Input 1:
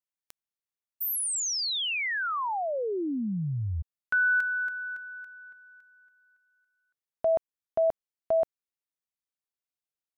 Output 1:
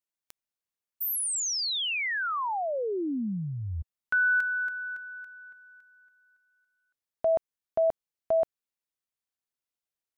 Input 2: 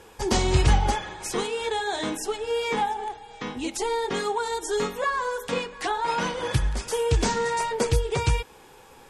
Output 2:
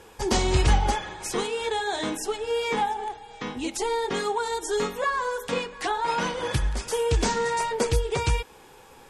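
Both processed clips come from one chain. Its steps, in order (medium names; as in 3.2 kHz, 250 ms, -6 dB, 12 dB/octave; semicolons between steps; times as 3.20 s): dynamic bell 120 Hz, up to -4 dB, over -36 dBFS, Q 1.4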